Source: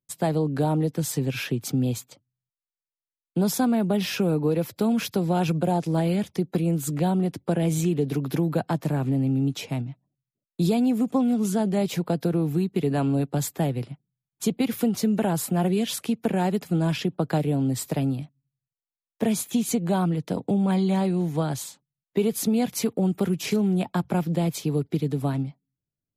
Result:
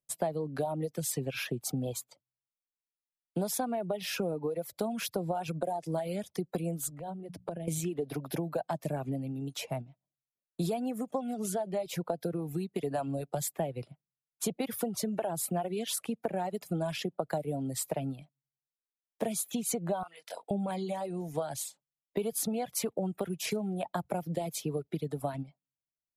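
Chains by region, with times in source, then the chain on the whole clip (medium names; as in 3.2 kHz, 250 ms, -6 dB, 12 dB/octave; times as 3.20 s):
6.86–7.68 s: bass shelf 260 Hz +10 dB + hum notches 60/120/180/240 Hz + compression 12:1, threshold -29 dBFS
20.03–20.51 s: high-pass 1.1 kHz + doubling 23 ms -2.5 dB
whole clip: fifteen-band graphic EQ 100 Hz -5 dB, 250 Hz -4 dB, 630 Hz +9 dB, 10 kHz +6 dB; compression, threshold -23 dBFS; reverb removal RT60 1.7 s; trim -4.5 dB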